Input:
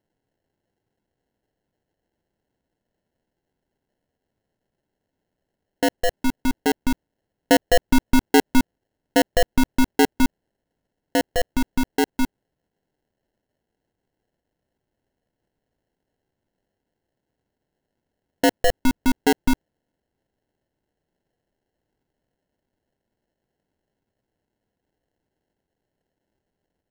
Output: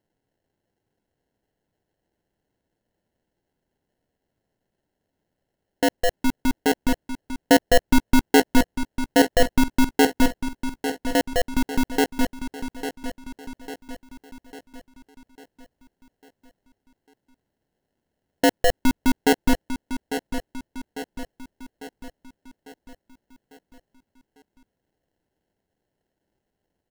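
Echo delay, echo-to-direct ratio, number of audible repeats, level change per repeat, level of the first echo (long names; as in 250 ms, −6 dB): 849 ms, −8.5 dB, 5, −6.0 dB, −10.0 dB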